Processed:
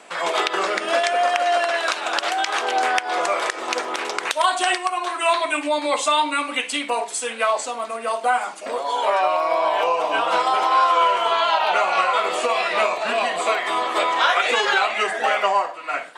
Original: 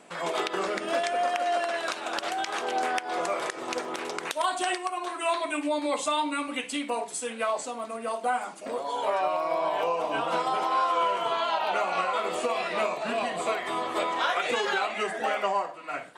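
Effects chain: weighting filter A; gain +8.5 dB

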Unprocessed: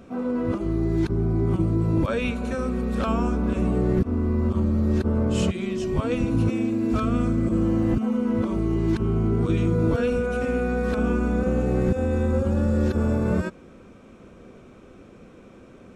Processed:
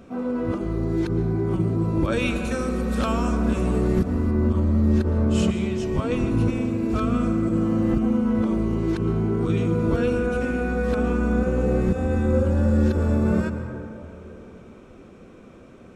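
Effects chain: 2.12–4.31 high shelf 3500 Hz +9.5 dB; reverb RT60 3.0 s, pre-delay 0.108 s, DRR 7.5 dB

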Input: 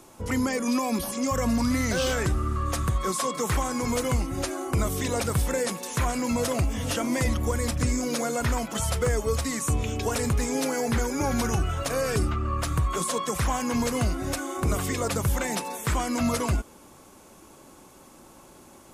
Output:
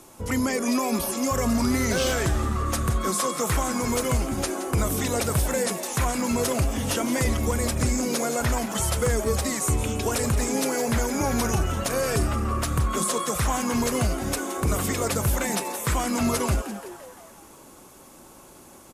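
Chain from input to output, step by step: high shelf 9200 Hz +6.5 dB; frequency-shifting echo 0.171 s, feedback 54%, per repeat +150 Hz, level -12 dB; downsampling 32000 Hz; gain +1 dB

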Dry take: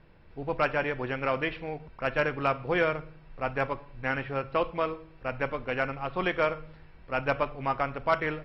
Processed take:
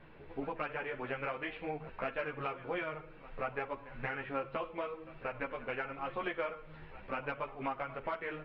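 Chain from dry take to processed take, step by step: LPF 3600 Hz 24 dB/oct; low shelf 150 Hz -8.5 dB; compressor 5:1, threshold -40 dBFS, peak gain reduction 18 dB; pre-echo 0.181 s -17 dB; ensemble effect; gain +7.5 dB

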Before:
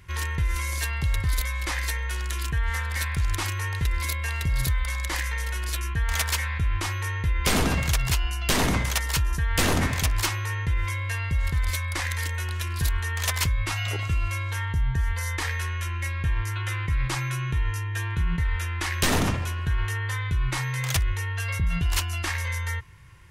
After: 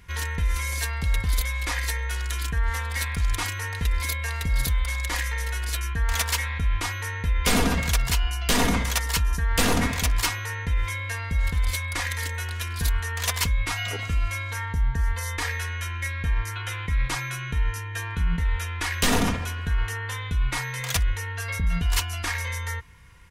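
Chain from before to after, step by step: comb 4.2 ms, depth 53%

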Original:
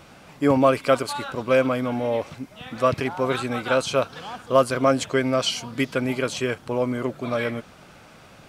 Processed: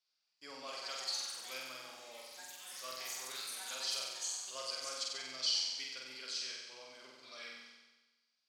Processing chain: gate with hold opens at -34 dBFS; band-pass 4800 Hz, Q 5.6; echoes that change speed 0.378 s, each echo +6 st, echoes 3, each echo -6 dB; on a send: flutter echo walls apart 8 m, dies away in 1.2 s; on the sum: gain -1 dB

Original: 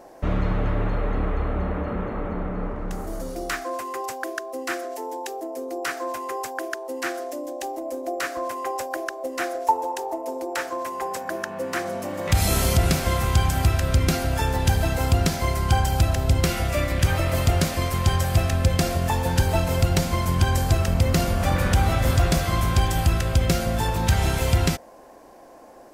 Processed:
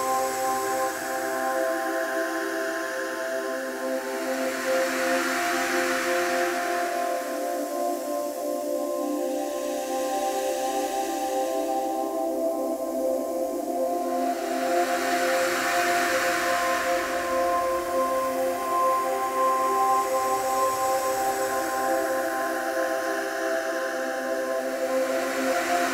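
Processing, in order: limiter -14 dBFS, peak gain reduction 5.5 dB; Paulstretch 8.8×, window 0.50 s, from 6.42; gain +4 dB

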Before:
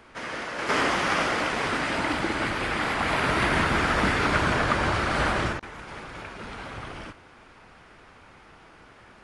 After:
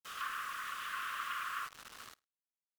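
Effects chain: median filter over 41 samples; brick-wall FIR high-pass 400 Hz; gate -57 dBFS, range -19 dB; frequency shift +190 Hz; plain phase-vocoder stretch 0.53×; treble ducked by the level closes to 1200 Hz, closed at -36.5 dBFS; requantised 8-bit, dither none; feedback echo 93 ms, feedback 35%, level -24 dB; wide varispeed 1.76×

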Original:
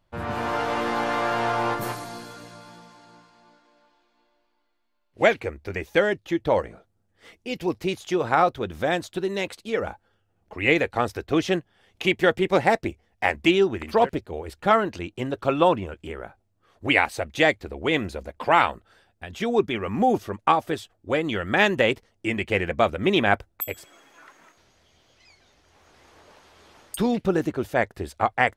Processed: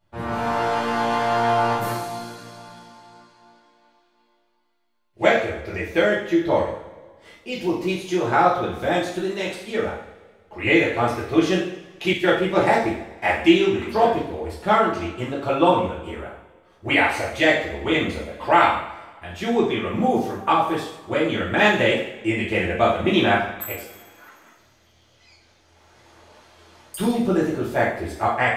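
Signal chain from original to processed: two-slope reverb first 0.63 s, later 1.9 s, DRR -6.5 dB; 12.13–12.61 three-band expander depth 70%; gain -5 dB

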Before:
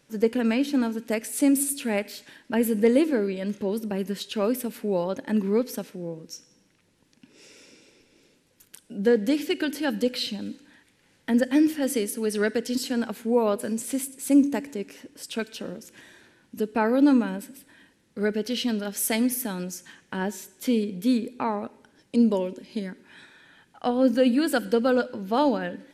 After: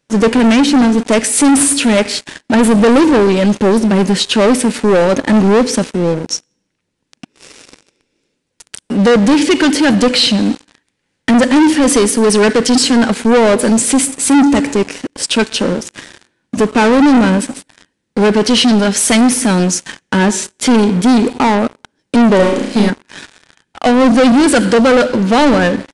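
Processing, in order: sample leveller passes 5; downsampling 22050 Hz; 22.36–22.9 flutter echo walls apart 5.8 m, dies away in 0.63 s; gain +4 dB

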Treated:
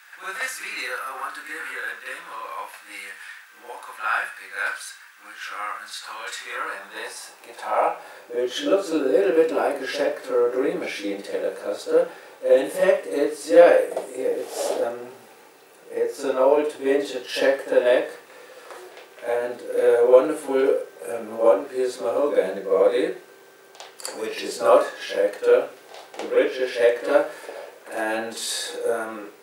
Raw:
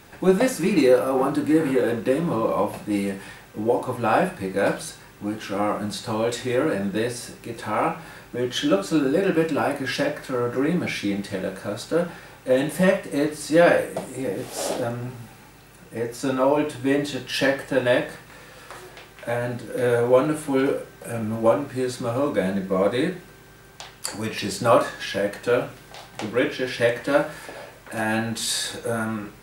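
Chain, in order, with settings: crackle 490/s -46 dBFS; reverse echo 52 ms -9.5 dB; high-pass sweep 1500 Hz -> 440 Hz, 6.19–8.5; gain -3 dB

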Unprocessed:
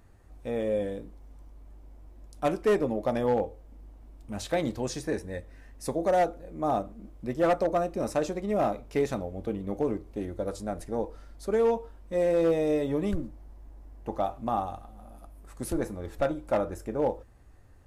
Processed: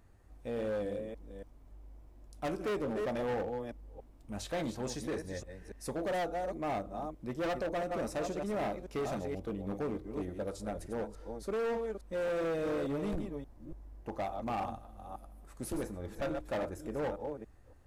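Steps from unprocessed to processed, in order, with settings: reverse delay 0.286 s, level -8 dB; hard clip -26 dBFS, distortion -9 dB; gain -5 dB

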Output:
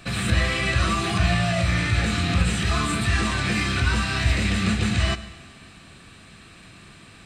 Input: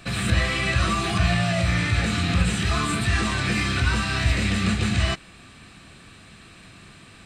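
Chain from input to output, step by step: Schroeder reverb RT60 1.5 s, combs from 33 ms, DRR 14 dB

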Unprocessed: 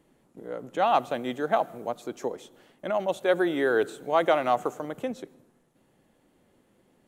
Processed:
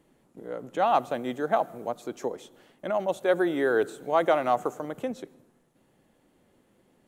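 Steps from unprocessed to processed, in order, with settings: dynamic EQ 3000 Hz, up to -4 dB, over -46 dBFS, Q 1.1

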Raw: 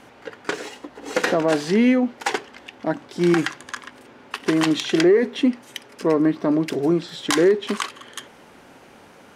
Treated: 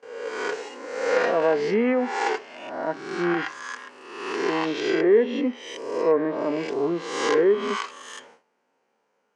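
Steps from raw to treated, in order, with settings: spectral swells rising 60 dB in 1.03 s; gate with hold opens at -32 dBFS; harmonic-percussive split percussive -10 dB; treble ducked by the level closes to 2500 Hz, closed at -13 dBFS; speaker cabinet 270–8200 Hz, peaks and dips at 310 Hz -6 dB, 460 Hz +6 dB, 940 Hz +4 dB, 3600 Hz -6 dB; gain -3 dB

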